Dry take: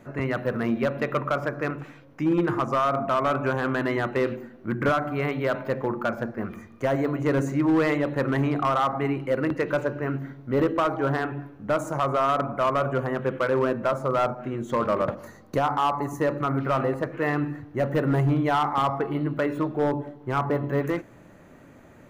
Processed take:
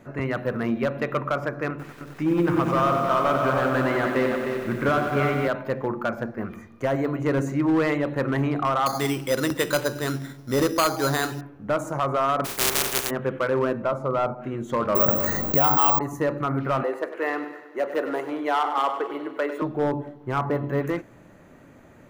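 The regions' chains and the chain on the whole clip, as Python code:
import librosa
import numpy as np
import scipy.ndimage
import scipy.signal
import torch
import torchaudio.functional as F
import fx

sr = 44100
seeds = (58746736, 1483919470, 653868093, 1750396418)

y = fx.chain(x, sr, fx.echo_single(ms=307, db=-6.5),
    fx.echo_crushed(ms=93, feedback_pct=80, bits=8, wet_db=-7), at=(1.7, 5.48))
y = fx.chain(y, sr, fx.high_shelf(hz=2100.0, db=11.5),
    fx.resample_bad(factor=8, down='none', up='hold'), at=(8.86, 11.41))
y = fx.spec_flatten(y, sr, power=0.11, at=(12.44, 13.09), fade=0.02)
y = fx.peak_eq(y, sr, hz=390.0, db=10.0, octaves=0.23, at=(12.44, 13.09), fade=0.02)
y = fx.chain(y, sr, fx.high_shelf(hz=4200.0, db=-11.0),
    fx.notch(hz=1700.0, q=5.4), at=(13.82, 14.42))
y = fx.chain(y, sr, fx.resample_bad(factor=2, down='none', up='zero_stuff'),
    fx.env_flatten(amount_pct=70), at=(14.95, 15.99))
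y = fx.chain(y, sr, fx.highpass(hz=330.0, slope=24),
    fx.echo_feedback(ms=98, feedback_pct=59, wet_db=-12), at=(16.83, 19.62))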